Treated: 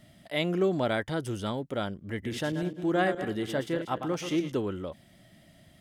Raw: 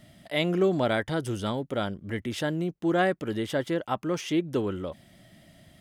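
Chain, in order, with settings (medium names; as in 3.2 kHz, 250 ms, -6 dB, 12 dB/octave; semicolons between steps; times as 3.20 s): 2.11–4.52 s: backward echo that repeats 104 ms, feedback 43%, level -8 dB; trim -2.5 dB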